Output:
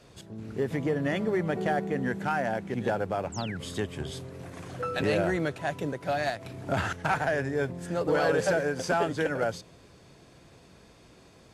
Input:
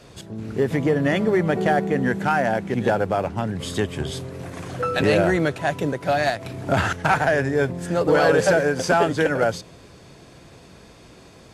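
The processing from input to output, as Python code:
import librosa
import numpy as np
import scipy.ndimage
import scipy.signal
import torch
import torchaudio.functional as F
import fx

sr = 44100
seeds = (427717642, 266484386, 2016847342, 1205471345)

y = fx.spec_paint(x, sr, seeds[0], shape='fall', start_s=3.32, length_s=0.25, low_hz=1300.0, high_hz=8300.0, level_db=-34.0)
y = F.gain(torch.from_numpy(y), -8.0).numpy()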